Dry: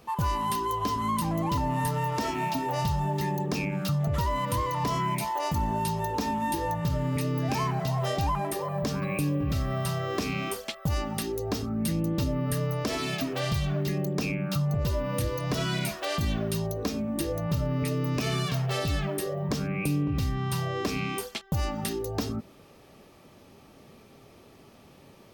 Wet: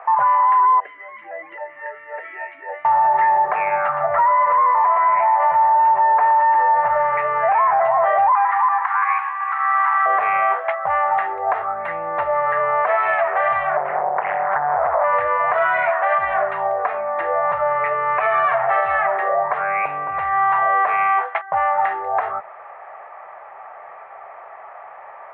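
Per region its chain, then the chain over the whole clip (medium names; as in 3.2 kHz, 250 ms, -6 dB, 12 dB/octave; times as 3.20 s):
0.80–2.85 s: comb 3.6 ms, depth 44% + talking filter e-i 3.7 Hz
3.55–6.96 s: low-pass 2.7 kHz + delay 117 ms -8.5 dB
8.32–10.06 s: median filter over 15 samples + steep high-pass 810 Hz 96 dB/octave + treble shelf 2 kHz +8.5 dB
13.77–15.04 s: low-pass 1.6 kHz + loudspeaker Doppler distortion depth 0.76 ms
whole clip: elliptic band-pass 700–2000 Hz, stop band 50 dB; tilt EQ -3 dB/octave; loudness maximiser +32 dB; trim -8.5 dB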